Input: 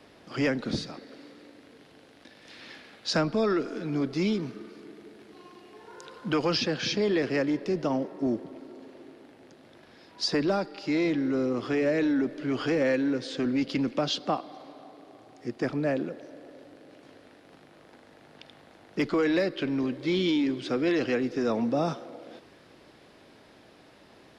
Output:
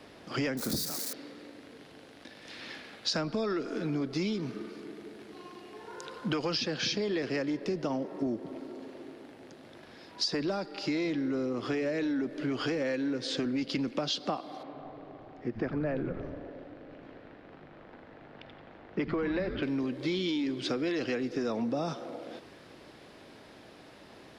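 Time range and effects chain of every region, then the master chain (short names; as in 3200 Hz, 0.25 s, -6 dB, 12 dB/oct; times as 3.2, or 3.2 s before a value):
0.57–1.13 switching spikes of -24 dBFS + bell 2900 Hz -11 dB 0.72 oct
14.63–19.63 LPF 2400 Hz + frequency-shifting echo 88 ms, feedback 61%, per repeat -140 Hz, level -11 dB
whole clip: dynamic EQ 4900 Hz, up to +4 dB, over -46 dBFS, Q 0.96; compressor, threshold -31 dBFS; gain +2.5 dB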